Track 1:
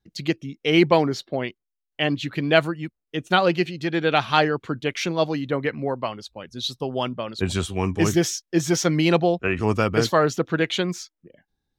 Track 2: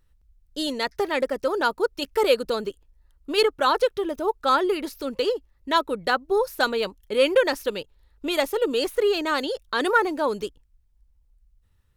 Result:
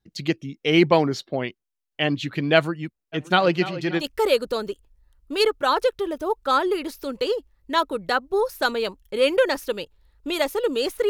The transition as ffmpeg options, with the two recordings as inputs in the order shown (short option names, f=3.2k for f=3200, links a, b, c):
-filter_complex "[0:a]asplit=3[a][b][c];[a]afade=t=out:st=3.12:d=0.02[d];[b]asplit=2[e][f];[f]adelay=290,lowpass=f=3.7k:p=1,volume=-14dB,asplit=2[g][h];[h]adelay=290,lowpass=f=3.7k:p=1,volume=0.5,asplit=2[i][j];[j]adelay=290,lowpass=f=3.7k:p=1,volume=0.5,asplit=2[k][l];[l]adelay=290,lowpass=f=3.7k:p=1,volume=0.5,asplit=2[m][n];[n]adelay=290,lowpass=f=3.7k:p=1,volume=0.5[o];[e][g][i][k][m][o]amix=inputs=6:normalize=0,afade=t=in:st=3.12:d=0.02,afade=t=out:st=4.03:d=0.02[p];[c]afade=t=in:st=4.03:d=0.02[q];[d][p][q]amix=inputs=3:normalize=0,apad=whole_dur=11.09,atrim=end=11.09,atrim=end=4.03,asetpts=PTS-STARTPTS[r];[1:a]atrim=start=1.95:end=9.07,asetpts=PTS-STARTPTS[s];[r][s]acrossfade=d=0.06:c1=tri:c2=tri"